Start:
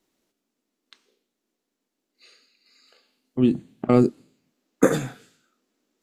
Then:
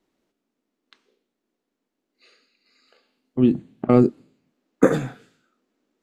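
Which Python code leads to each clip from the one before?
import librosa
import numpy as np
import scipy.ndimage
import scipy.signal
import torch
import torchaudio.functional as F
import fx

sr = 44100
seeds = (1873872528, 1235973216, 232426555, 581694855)

y = fx.high_shelf(x, sr, hz=4000.0, db=-12.0)
y = F.gain(torch.from_numpy(y), 2.0).numpy()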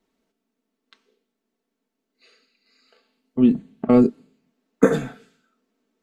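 y = x + 0.55 * np.pad(x, (int(4.5 * sr / 1000.0), 0))[:len(x)]
y = F.gain(torch.from_numpy(y), -1.0).numpy()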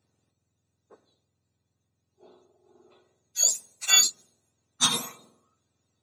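y = fx.octave_mirror(x, sr, pivot_hz=1300.0)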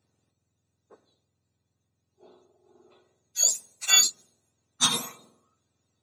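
y = x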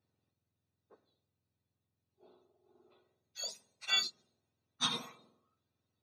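y = scipy.signal.savgol_filter(x, 15, 4, mode='constant')
y = F.gain(torch.from_numpy(y), -8.5).numpy()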